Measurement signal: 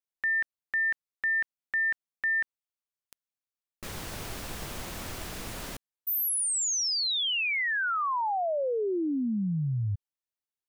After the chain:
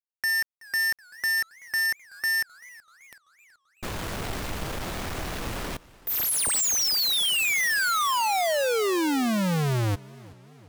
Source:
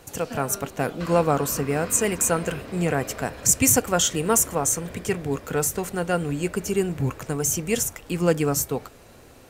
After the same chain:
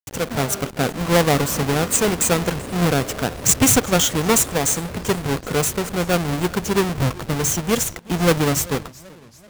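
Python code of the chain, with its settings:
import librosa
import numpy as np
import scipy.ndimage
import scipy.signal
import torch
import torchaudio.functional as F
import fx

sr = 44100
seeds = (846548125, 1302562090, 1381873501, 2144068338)

y = fx.halfwave_hold(x, sr)
y = fx.quant_dither(y, sr, seeds[0], bits=6, dither='none')
y = fx.echo_warbled(y, sr, ms=381, feedback_pct=54, rate_hz=2.8, cents=179, wet_db=-22.5)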